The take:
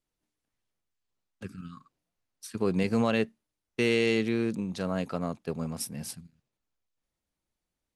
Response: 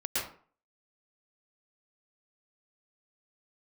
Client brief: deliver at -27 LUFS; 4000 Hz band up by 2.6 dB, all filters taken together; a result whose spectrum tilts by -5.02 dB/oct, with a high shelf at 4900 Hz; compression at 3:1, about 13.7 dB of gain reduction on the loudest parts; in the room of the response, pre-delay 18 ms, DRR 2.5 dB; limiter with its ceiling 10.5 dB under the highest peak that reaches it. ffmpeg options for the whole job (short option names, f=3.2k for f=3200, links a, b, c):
-filter_complex "[0:a]equalizer=f=4k:t=o:g=6,highshelf=f=4.9k:g=-5.5,acompressor=threshold=-40dB:ratio=3,alimiter=level_in=7dB:limit=-24dB:level=0:latency=1,volume=-7dB,asplit=2[a][b];[1:a]atrim=start_sample=2205,adelay=18[c];[b][c]afir=irnorm=-1:irlink=0,volume=-9dB[d];[a][d]amix=inputs=2:normalize=0,volume=15dB"